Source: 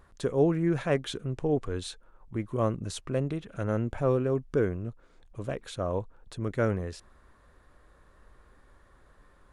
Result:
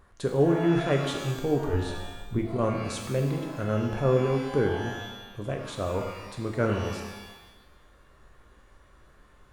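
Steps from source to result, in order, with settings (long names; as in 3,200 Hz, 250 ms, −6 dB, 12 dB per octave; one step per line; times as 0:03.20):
0:01.73–0:02.39: spectral tilt −2.5 dB per octave
reverb with rising layers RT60 1.1 s, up +12 semitones, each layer −8 dB, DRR 2.5 dB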